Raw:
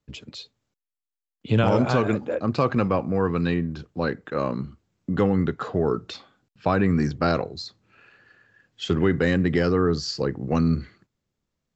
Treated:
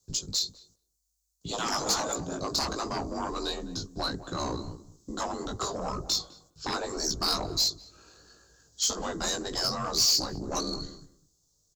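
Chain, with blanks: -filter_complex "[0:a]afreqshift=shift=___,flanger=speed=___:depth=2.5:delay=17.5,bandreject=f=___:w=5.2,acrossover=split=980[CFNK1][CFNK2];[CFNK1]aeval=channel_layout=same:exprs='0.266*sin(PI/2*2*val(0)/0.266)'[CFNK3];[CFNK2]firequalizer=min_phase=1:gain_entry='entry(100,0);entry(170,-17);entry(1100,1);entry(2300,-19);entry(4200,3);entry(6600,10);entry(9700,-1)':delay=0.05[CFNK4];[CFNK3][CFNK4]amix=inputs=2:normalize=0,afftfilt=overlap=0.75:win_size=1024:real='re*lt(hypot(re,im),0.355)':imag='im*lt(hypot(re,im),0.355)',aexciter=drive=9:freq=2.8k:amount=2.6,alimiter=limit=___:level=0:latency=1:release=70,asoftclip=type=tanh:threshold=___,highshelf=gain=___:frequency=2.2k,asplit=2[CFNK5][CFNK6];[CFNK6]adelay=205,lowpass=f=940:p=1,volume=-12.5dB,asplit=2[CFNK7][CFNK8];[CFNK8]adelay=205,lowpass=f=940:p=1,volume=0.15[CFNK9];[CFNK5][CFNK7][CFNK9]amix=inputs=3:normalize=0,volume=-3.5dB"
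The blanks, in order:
-51, 1.4, 230, -11dB, -19.5dB, 5.5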